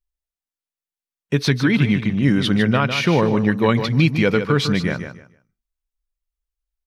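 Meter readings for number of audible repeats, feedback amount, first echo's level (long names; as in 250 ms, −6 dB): 2, 22%, −9.0 dB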